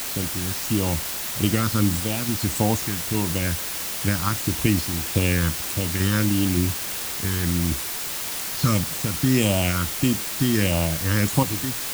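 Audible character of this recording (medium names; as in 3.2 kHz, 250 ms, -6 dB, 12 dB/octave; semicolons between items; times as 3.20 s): random-step tremolo, depth 65%; phasing stages 6, 1.6 Hz, lowest notch 640–1700 Hz; a quantiser's noise floor 6-bit, dither triangular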